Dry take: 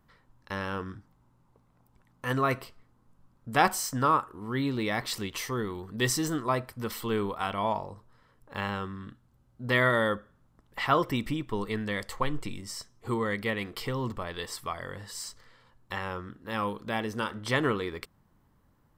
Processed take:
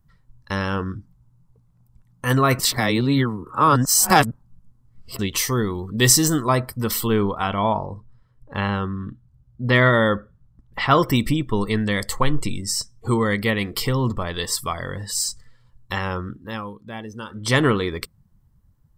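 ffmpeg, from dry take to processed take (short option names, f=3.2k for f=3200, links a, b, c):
-filter_complex "[0:a]asettb=1/sr,asplit=3[a][b][c];[a]atrim=end=7.074[d];[b]atrim=start=7.07:end=10.91,asetpts=PTS-STARTPTS,afade=t=in:d=0.004:c=qsin,afade=t=out:st=3.836:d=0.004:c=qsin,highshelf=f=5.4k:g=-10.5[e];[c]atrim=start=10.906[f];[d][e]acrossfade=d=0.004:c1=hsin:c2=qsin[g];[g][f]acrossfade=d=0.004:c1=qsin:c2=hsin,asplit=5[h][i][j][k][l];[h]atrim=end=2.592[m];[i]atrim=start=2.588:end=5.192,asetpts=PTS-STARTPTS,areverse[n];[j]atrim=start=5.188:end=16.63,asetpts=PTS-STARTPTS,afade=t=out:st=11.152:d=0.29:silence=0.266073[o];[k]atrim=start=16.63:end=17.27,asetpts=PTS-STARTPTS,volume=-11.5dB[p];[l]atrim=start=17.27,asetpts=PTS-STARTPTS,afade=t=in:d=0.29:silence=0.266073[q];[m][n]acrossfade=d=0.004:c1=hsin:c2=hsin[r];[o][p][q]concat=n=3:v=0:a=1[s];[r][s]acrossfade=d=0.004:c1=hsin:c2=hsin,acontrast=59,bass=f=250:g=5,treble=f=4k:g=9,afftdn=nr=16:nf=-42,volume=1.5dB"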